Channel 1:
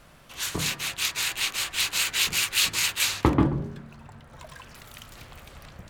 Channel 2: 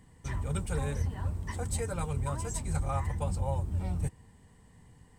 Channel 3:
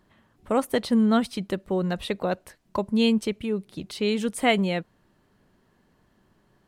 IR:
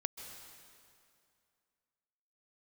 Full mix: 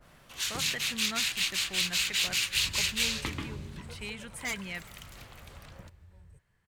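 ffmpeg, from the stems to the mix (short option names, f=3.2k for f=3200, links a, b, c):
-filter_complex "[0:a]acrossover=split=300|1800|6600[a][b][c][d];[a]acompressor=threshold=-36dB:ratio=4[e];[b]acompressor=threshold=-46dB:ratio=4[f];[c]acompressor=threshold=-28dB:ratio=4[g];[d]acompressor=threshold=-43dB:ratio=4[h];[e][f][g][h]amix=inputs=4:normalize=0,adynamicequalizer=threshold=0.00562:dfrequency=1600:dqfactor=0.7:tfrequency=1600:tqfactor=0.7:attack=5:release=100:ratio=0.375:range=3:mode=boostabove:tftype=highshelf,volume=-6dB,asplit=2[i][j];[j]volume=-11.5dB[k];[1:a]aecho=1:1:2:0.65,alimiter=limit=-24dB:level=0:latency=1:release=151,adelay=2300,volume=-12dB,afade=t=out:st=3.89:d=0.45:silence=0.266073[l];[2:a]equalizer=f=250:t=o:w=1:g=-12,equalizer=f=500:t=o:w=1:g=-11,equalizer=f=1k:t=o:w=1:g=-5,equalizer=f=2k:t=o:w=1:g=8,equalizer=f=4k:t=o:w=1:g=-4,aeval=exprs='0.106*(abs(mod(val(0)/0.106+3,4)-2)-1)':c=same,volume=-10.5dB,asplit=2[m][n];[n]volume=-11dB[o];[3:a]atrim=start_sample=2205[p];[k][o]amix=inputs=2:normalize=0[q];[q][p]afir=irnorm=-1:irlink=0[r];[i][l][m][r]amix=inputs=4:normalize=0"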